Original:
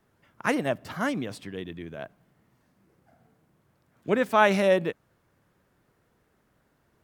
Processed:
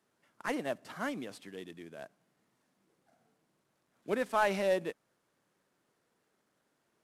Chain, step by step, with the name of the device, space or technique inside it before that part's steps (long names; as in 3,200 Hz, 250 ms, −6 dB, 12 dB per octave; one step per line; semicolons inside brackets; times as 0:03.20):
early wireless headset (high-pass filter 210 Hz 12 dB per octave; variable-slope delta modulation 64 kbit/s)
level −7.5 dB